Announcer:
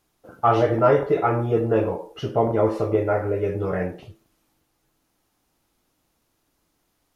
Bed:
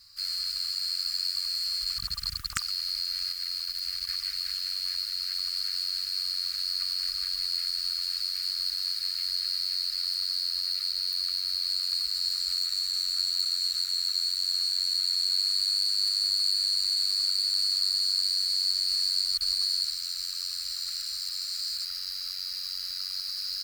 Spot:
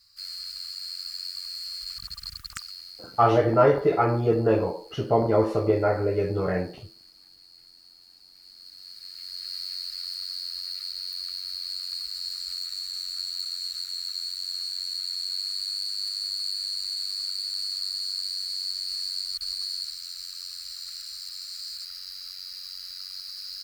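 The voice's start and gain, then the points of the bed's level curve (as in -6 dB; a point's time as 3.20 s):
2.75 s, -1.0 dB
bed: 2.52 s -5.5 dB
3.45 s -23 dB
8.25 s -23 dB
9.57 s -4.5 dB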